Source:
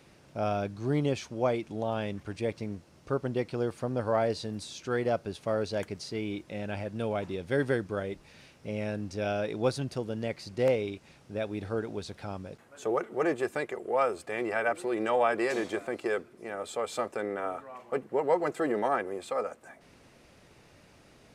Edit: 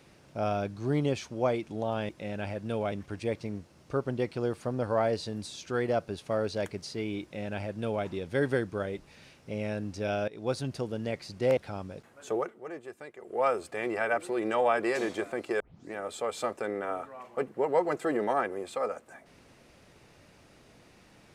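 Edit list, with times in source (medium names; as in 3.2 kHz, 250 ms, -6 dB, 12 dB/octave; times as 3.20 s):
6.39–7.22 s: copy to 2.09 s
9.45–9.93 s: fade in equal-power, from -19 dB
10.74–12.12 s: delete
12.88–13.97 s: dip -13 dB, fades 0.25 s
16.15 s: tape start 0.33 s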